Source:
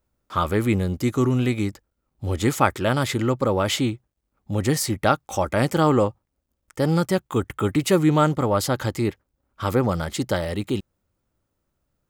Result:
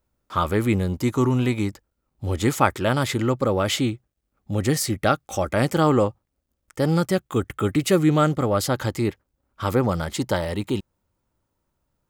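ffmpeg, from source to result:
-af "asetnsamples=n=441:p=0,asendcmd='0.88 equalizer g 11;1.68 equalizer g 1;3.34 equalizer g -5.5;4.78 equalizer g -12.5;5.51 equalizer g -2;7.11 equalizer g -9;8.69 equalizer g 0.5;10.14 equalizer g 8',equalizer=f=940:t=o:w=0.2:g=1.5"

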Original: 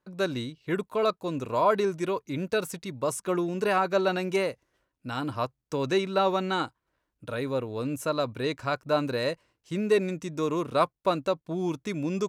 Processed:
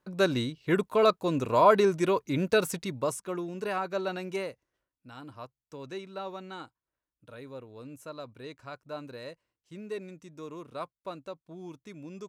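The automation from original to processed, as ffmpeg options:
-af "volume=3dB,afade=t=out:st=2.81:d=0.44:silence=0.316228,afade=t=out:st=4.38:d=0.72:silence=0.446684"

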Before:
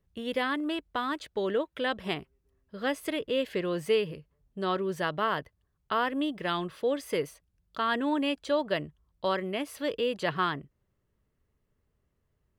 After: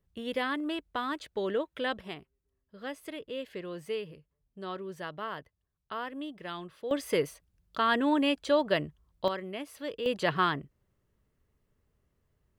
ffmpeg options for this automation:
-af "asetnsamples=n=441:p=0,asendcmd='2.01 volume volume -9dB;6.91 volume volume 2dB;9.28 volume volume -6dB;10.06 volume volume 1.5dB',volume=-2dB"

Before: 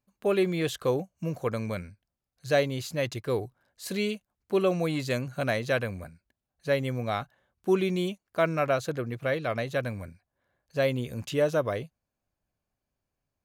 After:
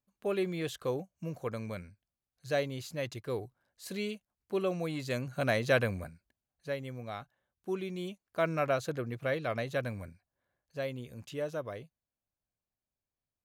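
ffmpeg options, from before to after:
-af "volume=8dB,afade=t=in:st=5:d=0.85:silence=0.398107,afade=t=out:st=5.85:d=0.91:silence=0.251189,afade=t=in:st=7.94:d=0.61:silence=0.446684,afade=t=out:st=10.04:d=0.83:silence=0.446684"

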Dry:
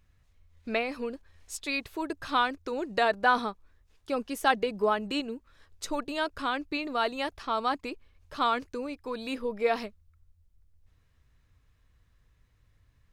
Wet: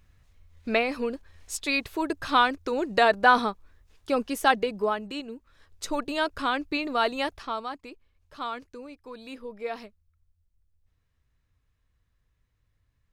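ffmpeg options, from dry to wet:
-af "volume=13dB,afade=t=out:st=4.21:d=0.95:silence=0.334965,afade=t=in:st=5.16:d=0.92:silence=0.398107,afade=t=out:st=7.23:d=0.45:silence=0.298538"

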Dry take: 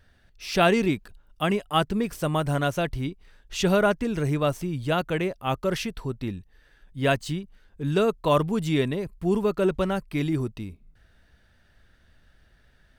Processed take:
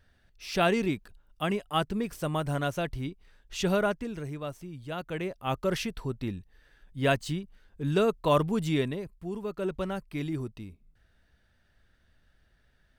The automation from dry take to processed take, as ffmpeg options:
-af "volume=11dB,afade=t=out:st=3.76:d=0.54:silence=0.421697,afade=t=in:st=4.9:d=0.76:silence=0.316228,afade=t=out:st=8.64:d=0.68:silence=0.298538,afade=t=in:st=9.32:d=0.53:silence=0.501187"

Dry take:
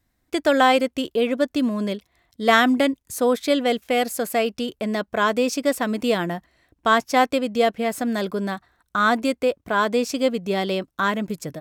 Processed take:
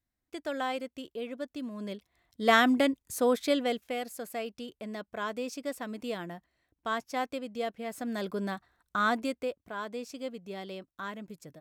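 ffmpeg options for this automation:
-af "volume=1dB,afade=t=in:st=1.7:d=0.73:silence=0.298538,afade=t=out:st=3.42:d=0.58:silence=0.375837,afade=t=in:st=7.83:d=0.58:silence=0.446684,afade=t=out:st=8.96:d=0.76:silence=0.334965"

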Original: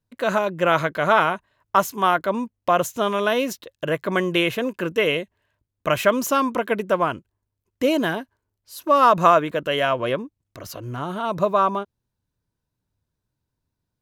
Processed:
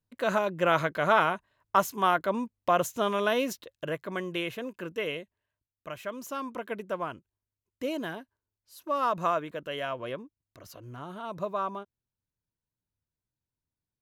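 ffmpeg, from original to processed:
-af "volume=2dB,afade=t=out:st=3.58:d=0.49:silence=0.473151,afade=t=out:st=5.08:d=0.92:silence=0.398107,afade=t=in:st=6:d=0.68:silence=0.421697"

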